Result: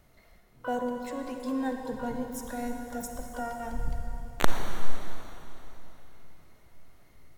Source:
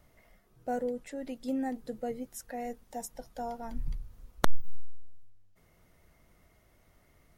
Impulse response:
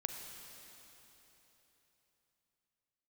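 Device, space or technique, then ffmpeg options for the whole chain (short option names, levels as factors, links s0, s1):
shimmer-style reverb: -filter_complex "[0:a]asplit=3[s0][s1][s2];[s0]afade=t=out:st=1.91:d=0.02[s3];[s1]asubboost=boost=3:cutoff=240,afade=t=in:st=1.91:d=0.02,afade=t=out:st=3.34:d=0.02[s4];[s2]afade=t=in:st=3.34:d=0.02[s5];[s3][s4][s5]amix=inputs=3:normalize=0,asplit=2[s6][s7];[s7]asetrate=88200,aresample=44100,atempo=0.5,volume=0.398[s8];[s6][s8]amix=inputs=2:normalize=0[s9];[1:a]atrim=start_sample=2205[s10];[s9][s10]afir=irnorm=-1:irlink=0,volume=1.33"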